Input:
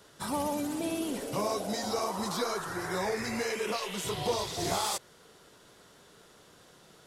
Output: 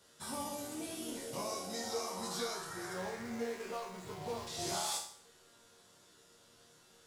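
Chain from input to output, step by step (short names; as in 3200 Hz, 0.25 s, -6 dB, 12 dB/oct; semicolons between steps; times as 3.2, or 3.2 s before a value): 2.93–4.47 median filter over 15 samples; bell 7200 Hz +6 dB 2 oct; resonator bank D#2 minor, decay 0.53 s; gain +6 dB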